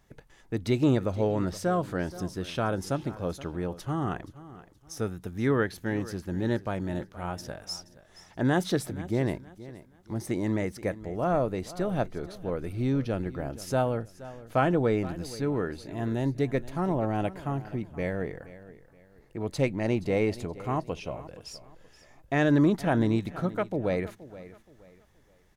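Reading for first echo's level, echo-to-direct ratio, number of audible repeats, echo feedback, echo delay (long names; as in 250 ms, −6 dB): −17.0 dB, −16.5 dB, 2, 31%, 474 ms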